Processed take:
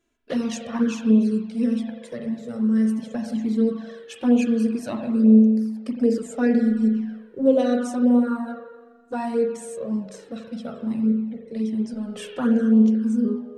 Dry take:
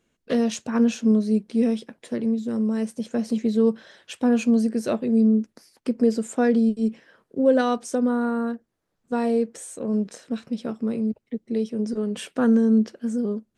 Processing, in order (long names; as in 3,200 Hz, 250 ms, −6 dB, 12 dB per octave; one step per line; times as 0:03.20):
spring reverb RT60 1.4 s, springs 41 ms, chirp 55 ms, DRR 2.5 dB
flanger swept by the level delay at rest 3 ms, full sweep at −12 dBFS